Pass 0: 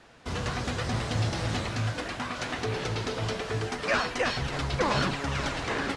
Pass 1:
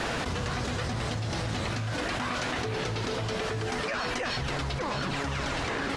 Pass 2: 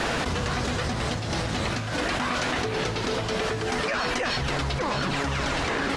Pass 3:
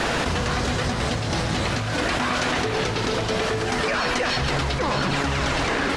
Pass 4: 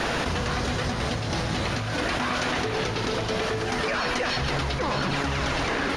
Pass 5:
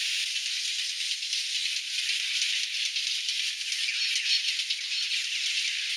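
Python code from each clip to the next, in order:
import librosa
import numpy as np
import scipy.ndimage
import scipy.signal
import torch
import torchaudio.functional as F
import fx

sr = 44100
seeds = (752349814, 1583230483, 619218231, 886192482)

y1 = fx.env_flatten(x, sr, amount_pct=100)
y1 = y1 * librosa.db_to_amplitude(-8.0)
y2 = fx.peak_eq(y1, sr, hz=110.0, db=-6.0, octaves=0.26)
y2 = y2 * librosa.db_to_amplitude(4.5)
y3 = y2 + 10.0 ** (-9.0 / 20.0) * np.pad(y2, (int(136 * sr / 1000.0), 0))[:len(y2)]
y3 = y3 * librosa.db_to_amplitude(3.0)
y4 = fx.notch(y3, sr, hz=7800.0, q=5.0)
y4 = y4 * librosa.db_to_amplitude(-3.0)
y5 = scipy.signal.sosfilt(scipy.signal.butter(6, 2500.0, 'highpass', fs=sr, output='sos'), y4)
y5 = y5 * librosa.db_to_amplitude(6.5)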